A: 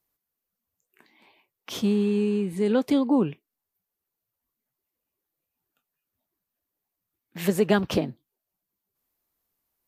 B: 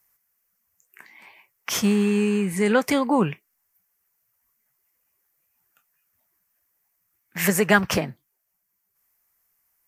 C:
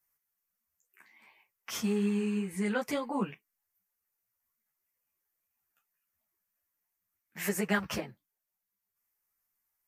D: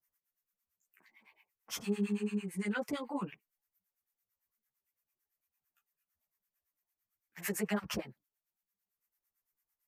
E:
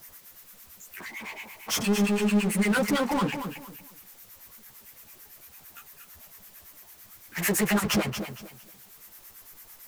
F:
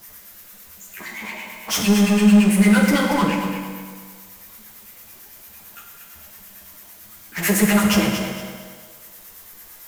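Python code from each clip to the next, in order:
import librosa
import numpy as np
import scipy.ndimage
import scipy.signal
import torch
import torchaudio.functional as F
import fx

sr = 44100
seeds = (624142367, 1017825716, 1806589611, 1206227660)

y1 = fx.curve_eq(x, sr, hz=(190.0, 270.0, 2000.0, 3800.0, 5600.0), db=(0, -7, 11, -3, 9))
y1 = fx.rider(y1, sr, range_db=10, speed_s=2.0)
y1 = F.gain(torch.from_numpy(y1), 4.5).numpy()
y2 = fx.ensemble(y1, sr)
y2 = F.gain(torch.from_numpy(y2), -8.5).numpy()
y3 = fx.harmonic_tremolo(y2, sr, hz=8.9, depth_pct=100, crossover_hz=870.0)
y4 = fx.power_curve(y3, sr, exponent=0.5)
y4 = fx.echo_feedback(y4, sr, ms=231, feedback_pct=27, wet_db=-8.5)
y4 = F.gain(torch.from_numpy(y4), 5.5).numpy()
y5 = fx.rev_fdn(y4, sr, rt60_s=1.8, lf_ratio=0.75, hf_ratio=0.8, size_ms=29.0, drr_db=1.0)
y5 = F.gain(torch.from_numpy(y5), 4.0).numpy()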